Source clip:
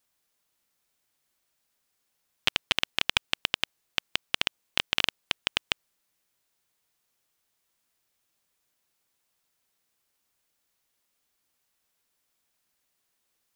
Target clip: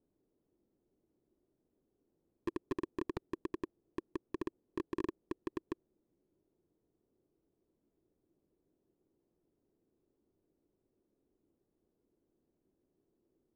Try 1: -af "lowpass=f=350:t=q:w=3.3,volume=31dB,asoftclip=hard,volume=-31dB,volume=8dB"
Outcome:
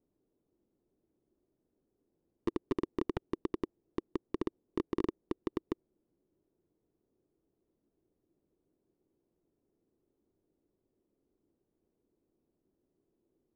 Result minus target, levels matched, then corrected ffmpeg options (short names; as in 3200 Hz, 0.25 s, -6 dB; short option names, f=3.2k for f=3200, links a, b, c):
overloaded stage: distortion -4 dB
-af "lowpass=f=350:t=q:w=3.3,volume=37.5dB,asoftclip=hard,volume=-37.5dB,volume=8dB"